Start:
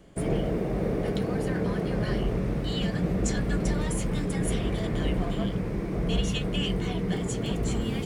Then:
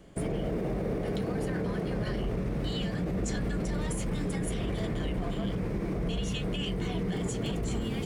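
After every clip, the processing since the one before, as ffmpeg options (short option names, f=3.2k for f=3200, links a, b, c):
-af "alimiter=limit=-23.5dB:level=0:latency=1:release=43"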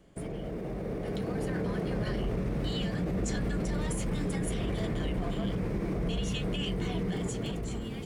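-af "dynaudnorm=f=320:g=7:m=6dB,volume=-6dB"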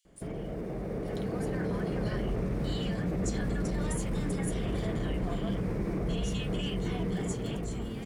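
-filter_complex "[0:a]acrossover=split=3200[a][b];[a]adelay=50[c];[c][b]amix=inputs=2:normalize=0"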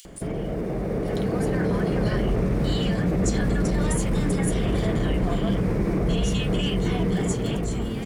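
-af "acompressor=mode=upward:threshold=-43dB:ratio=2.5,volume=8.5dB"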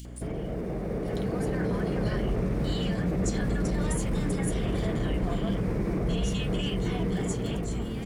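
-af "aeval=exprs='val(0)+0.0178*(sin(2*PI*60*n/s)+sin(2*PI*2*60*n/s)/2+sin(2*PI*3*60*n/s)/3+sin(2*PI*4*60*n/s)/4+sin(2*PI*5*60*n/s)/5)':c=same,volume=-5dB"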